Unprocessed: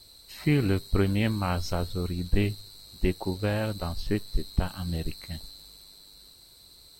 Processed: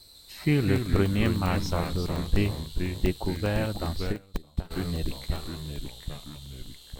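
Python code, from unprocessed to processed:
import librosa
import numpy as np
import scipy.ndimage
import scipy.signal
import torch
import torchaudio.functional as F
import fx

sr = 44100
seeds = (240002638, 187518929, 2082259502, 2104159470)

y = fx.echo_pitch(x, sr, ms=150, semitones=-2, count=3, db_per_echo=-6.0)
y = fx.buffer_crackle(y, sr, first_s=0.76, period_s=0.1, block=64, kind='zero')
y = fx.upward_expand(y, sr, threshold_db=-31.0, expansion=2.5, at=(4.11, 4.7), fade=0.02)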